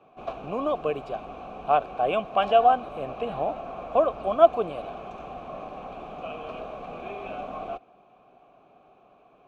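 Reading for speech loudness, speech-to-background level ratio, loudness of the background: −25.0 LKFS, 12.5 dB, −37.5 LKFS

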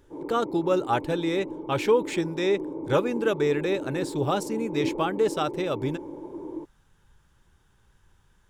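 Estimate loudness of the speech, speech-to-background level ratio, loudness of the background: −27.0 LKFS, 8.5 dB, −35.5 LKFS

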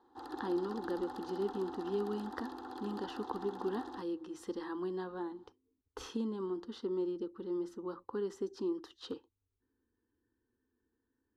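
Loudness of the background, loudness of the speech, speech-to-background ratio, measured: −46.5 LKFS, −39.5 LKFS, 7.0 dB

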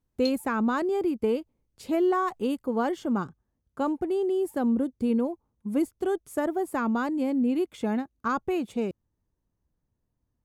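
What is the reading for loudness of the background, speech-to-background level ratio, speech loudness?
−39.5 LKFS, 11.5 dB, −28.0 LKFS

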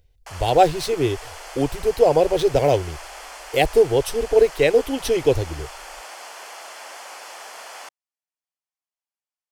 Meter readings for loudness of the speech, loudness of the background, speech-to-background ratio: −19.5 LKFS, −37.5 LKFS, 18.0 dB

